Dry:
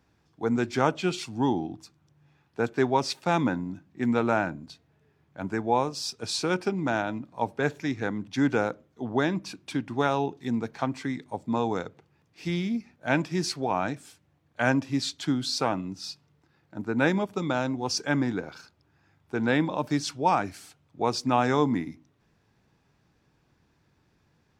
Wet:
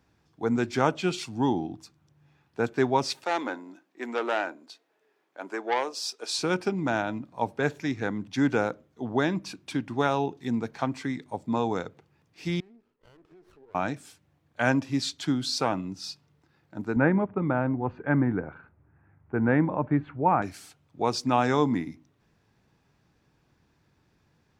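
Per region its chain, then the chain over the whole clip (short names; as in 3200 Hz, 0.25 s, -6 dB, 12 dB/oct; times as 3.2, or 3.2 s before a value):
3.24–6.39 HPF 340 Hz 24 dB/oct + core saturation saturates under 1400 Hz
12.6–13.75 double band-pass 750 Hz, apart 1.6 oct + compressor 8:1, threshold -51 dBFS + running maximum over 17 samples
16.96–20.42 inverse Chebyshev low-pass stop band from 5000 Hz, stop band 50 dB + low shelf 110 Hz +12 dB
whole clip: dry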